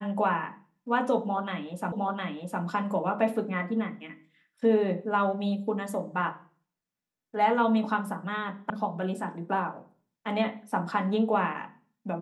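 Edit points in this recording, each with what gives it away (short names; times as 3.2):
1.92 repeat of the last 0.71 s
8.7 sound cut off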